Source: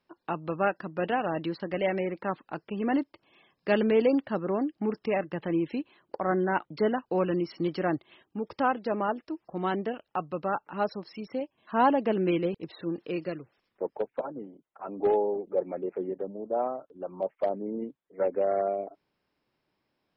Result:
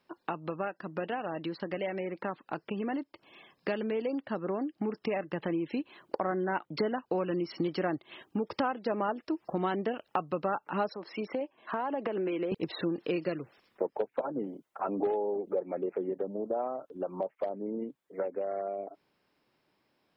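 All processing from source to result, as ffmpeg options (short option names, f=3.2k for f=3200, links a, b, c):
-filter_complex "[0:a]asettb=1/sr,asplit=3[a][b][c];[a]atrim=end=10.944[d];[b]atrim=start=10.94:end=12.52,asetpts=PTS-STARTPTS,afade=t=in:d=0.004:c=qsin,afade=t=out:st=1.576:d=0.004:c=qsin,acrossover=split=250 3000:gain=0.2 1 0.224[e][f][g];[e][f][g]amix=inputs=3:normalize=0,acompressor=threshold=-36dB:ratio=6:attack=3.2:release=140:knee=1:detection=peak[h];[c]atrim=start=12.516[i];[d][h]acrossfade=d=0.004:c1=hsin:c2=qsin[j];[j][i]acrossfade=d=0.004:c1=qsin:c2=hsin,acompressor=threshold=-37dB:ratio=6,lowshelf=f=88:g=-9.5,dynaudnorm=f=770:g=13:m=4dB,volume=5.5dB"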